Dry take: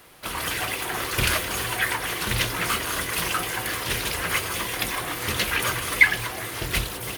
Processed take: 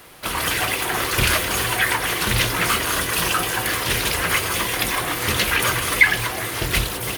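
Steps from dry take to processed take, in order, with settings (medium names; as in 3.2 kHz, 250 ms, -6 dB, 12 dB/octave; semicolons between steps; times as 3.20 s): 2.98–3.63 s: band-stop 2.1 kHz, Q 12; in parallel at +1.5 dB: peak limiter -15 dBFS, peak gain reduction 11.5 dB; on the sum: trim -1 dB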